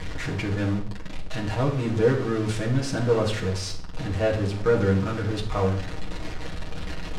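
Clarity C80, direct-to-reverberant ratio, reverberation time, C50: 13.0 dB, -3.5 dB, 0.55 s, 9.0 dB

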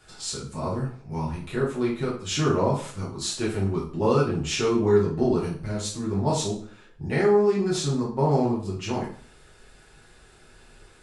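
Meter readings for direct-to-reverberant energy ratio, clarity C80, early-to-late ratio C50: -6.0 dB, 10.5 dB, 5.5 dB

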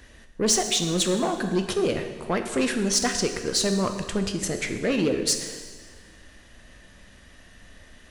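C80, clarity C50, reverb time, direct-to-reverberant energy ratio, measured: 9.0 dB, 8.0 dB, 1.6 s, 5.5 dB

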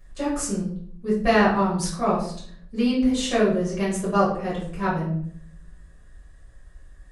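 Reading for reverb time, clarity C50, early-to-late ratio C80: 0.60 s, 4.5 dB, 8.5 dB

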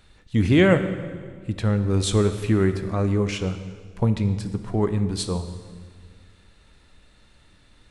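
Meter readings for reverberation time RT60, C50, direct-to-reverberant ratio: 1.8 s, 10.5 dB, 9.0 dB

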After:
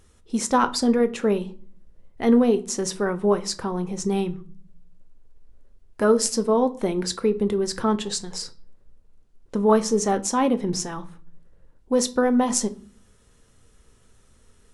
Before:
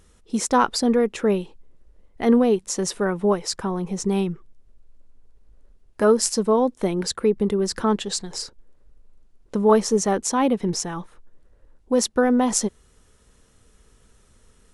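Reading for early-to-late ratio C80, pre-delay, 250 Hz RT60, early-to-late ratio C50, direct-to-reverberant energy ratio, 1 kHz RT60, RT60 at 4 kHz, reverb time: 23.5 dB, 8 ms, 0.80 s, 18.5 dB, 9.5 dB, 0.45 s, 0.35 s, 0.45 s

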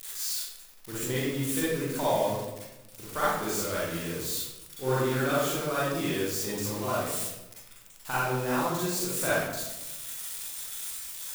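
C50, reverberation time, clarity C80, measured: -4.0 dB, 1.0 s, 1.5 dB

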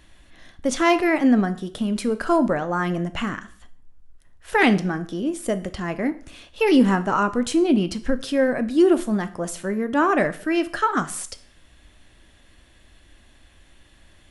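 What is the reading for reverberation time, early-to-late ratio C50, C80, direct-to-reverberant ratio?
0.50 s, 16.0 dB, 20.0 dB, 10.5 dB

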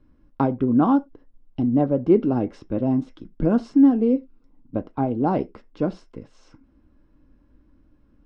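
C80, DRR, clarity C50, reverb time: 30.5 dB, 9.0 dB, 25.0 dB, not exponential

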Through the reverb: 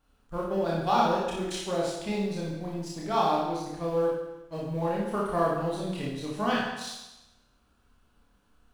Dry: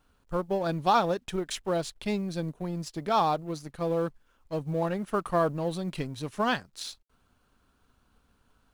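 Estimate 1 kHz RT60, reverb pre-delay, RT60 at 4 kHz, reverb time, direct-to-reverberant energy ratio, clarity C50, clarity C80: 1.0 s, 26 ms, 0.95 s, 1.0 s, -4.5 dB, 0.5 dB, 3.5 dB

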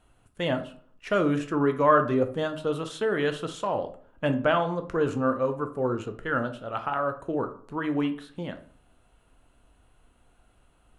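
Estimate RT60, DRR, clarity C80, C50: 0.50 s, 6.5 dB, 17.5 dB, 12.5 dB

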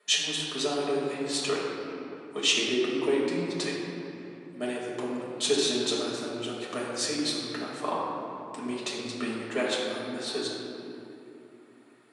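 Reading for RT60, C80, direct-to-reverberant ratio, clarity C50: 2.8 s, 1.0 dB, -6.0 dB, -1.0 dB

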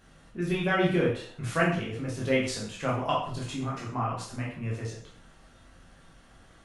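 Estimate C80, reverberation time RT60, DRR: 8.0 dB, 0.55 s, -4.5 dB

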